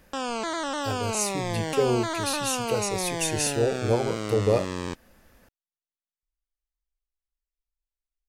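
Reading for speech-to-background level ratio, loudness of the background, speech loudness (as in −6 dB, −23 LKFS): 3.0 dB, −30.5 LKFS, −27.5 LKFS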